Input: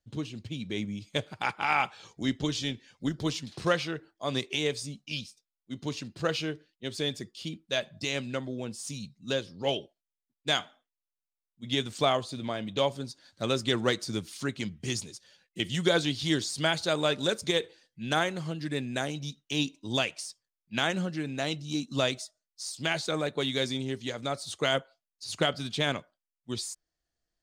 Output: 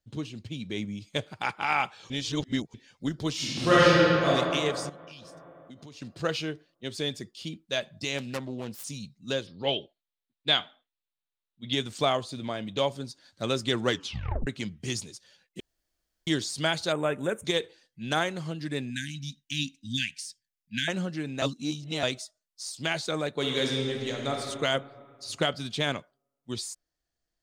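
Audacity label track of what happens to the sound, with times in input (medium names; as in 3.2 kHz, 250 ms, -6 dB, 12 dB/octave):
2.100000	2.740000	reverse
3.340000	4.270000	reverb throw, RT60 2.7 s, DRR -11 dB
4.890000	6.020000	compression 8:1, threshold -43 dBFS
8.180000	8.840000	self-modulated delay depth 0.3 ms
9.470000	11.730000	resonant high shelf 4.9 kHz -7.5 dB, Q 3
13.890000	13.890000	tape stop 0.58 s
15.600000	16.270000	room tone
16.920000	17.450000	Butterworth band-stop 4.6 kHz, Q 0.74
18.900000	20.880000	brick-wall FIR band-stop 290–1500 Hz
21.420000	22.030000	reverse
23.340000	24.320000	reverb throw, RT60 2.3 s, DRR 0.5 dB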